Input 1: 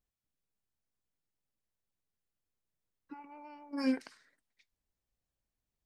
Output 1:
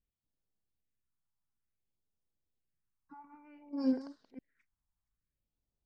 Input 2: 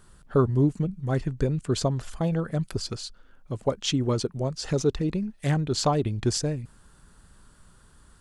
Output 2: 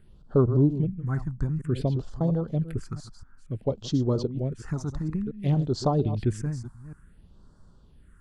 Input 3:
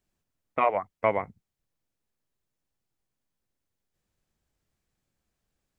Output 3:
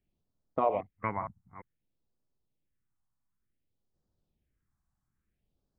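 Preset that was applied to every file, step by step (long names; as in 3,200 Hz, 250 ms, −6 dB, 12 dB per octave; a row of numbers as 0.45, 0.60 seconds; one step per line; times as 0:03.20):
delay that plays each chunk backwards 231 ms, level −11 dB
all-pass phaser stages 4, 0.56 Hz, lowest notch 440–2,400 Hz
high-shelf EQ 2,900 Hz −11.5 dB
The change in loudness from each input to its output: 0.0, −0.5, −5.5 LU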